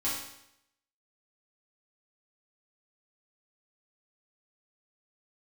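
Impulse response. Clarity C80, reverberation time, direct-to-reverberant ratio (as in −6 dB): 5.5 dB, 0.80 s, −9.5 dB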